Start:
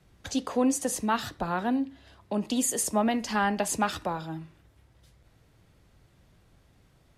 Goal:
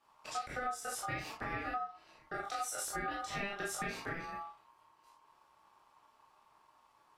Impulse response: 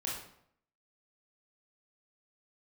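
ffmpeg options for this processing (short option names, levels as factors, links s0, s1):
-filter_complex "[1:a]atrim=start_sample=2205,afade=t=out:st=0.15:d=0.01,atrim=end_sample=7056,asetrate=52920,aresample=44100[s0];[0:a][s0]afir=irnorm=-1:irlink=0,acompressor=threshold=0.0355:ratio=6,aeval=exprs='val(0)*sin(2*PI*1000*n/s)':c=same,volume=0.668"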